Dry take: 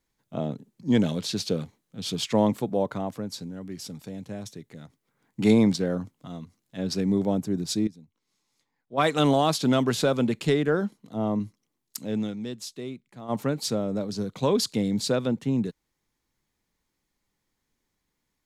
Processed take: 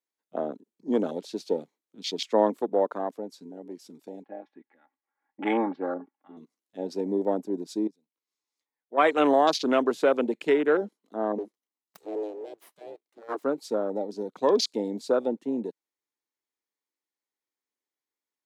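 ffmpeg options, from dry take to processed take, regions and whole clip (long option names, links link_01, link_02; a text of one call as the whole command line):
ffmpeg -i in.wav -filter_complex "[0:a]asettb=1/sr,asplit=3[link_01][link_02][link_03];[link_01]atrim=end=4.234[link_04];[link_02]atrim=start=4.23:end=6.37,asetpts=PTS-STARTPTS,afade=type=in:duration=0.004:curve=qsin,afade=type=out:start_time=2.136:duration=0.004:curve=qsin,highpass=120,equalizer=frequency=210:width_type=q:width=4:gain=-9,equalizer=frequency=310:width_type=q:width=4:gain=-5,equalizer=frequency=520:width_type=q:width=4:gain=-9,equalizer=frequency=820:width_type=q:width=4:gain=10,equalizer=frequency=1700:width_type=q:width=4:gain=6,lowpass=frequency=2400:width=0.5412,lowpass=frequency=2400:width=1.3066,aecho=1:1:3.6:0.68,atrim=end_sample=94374[link_05];[link_03]atrim=start=6.366[link_06];[link_04][link_05]acrossfade=duration=0.004:curve1=hsin:curve2=qsin[link_07];[link_07][link_06]acrossfade=duration=0.004:curve1=qsin:curve2=hsin,asettb=1/sr,asplit=3[link_08][link_09][link_10];[link_08]atrim=end=11.384[link_11];[link_09]atrim=start=11.38:end=13.43,asetpts=PTS-STARTPTS,afade=type=in:duration=0.004:curve=qsin,afade=type=out:start_time=2.046:duration=0.004:curve=qsin,aecho=1:1:1:0.58,atrim=end_sample=90405,aeval=exprs='abs(val(0))':channel_layout=same[link_12];[link_10]atrim=start=13.426[link_13];[link_11][link_12]acrossfade=duration=0.004:curve1=hsin:curve2=qsin[link_14];[link_14][link_13]acrossfade=duration=0.004:curve1=qsin:curve2=hsin,afwtdn=0.0251,highpass=frequency=300:width=0.5412,highpass=frequency=300:width=1.3066,volume=2.5dB" out.wav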